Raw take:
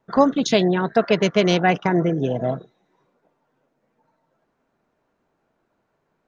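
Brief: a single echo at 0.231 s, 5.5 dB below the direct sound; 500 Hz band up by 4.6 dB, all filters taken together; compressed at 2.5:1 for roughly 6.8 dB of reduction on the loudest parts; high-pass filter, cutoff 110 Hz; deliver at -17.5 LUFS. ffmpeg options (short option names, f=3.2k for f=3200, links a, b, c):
-af "highpass=110,equalizer=f=500:t=o:g=6,acompressor=threshold=-17dB:ratio=2.5,aecho=1:1:231:0.531,volume=3dB"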